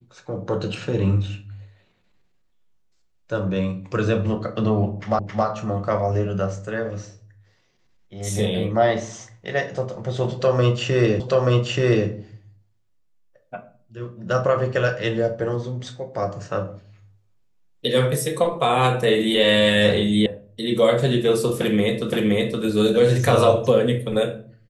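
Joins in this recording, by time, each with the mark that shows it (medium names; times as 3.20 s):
5.19 s: repeat of the last 0.27 s
11.20 s: repeat of the last 0.88 s
20.26 s: sound stops dead
22.10 s: repeat of the last 0.52 s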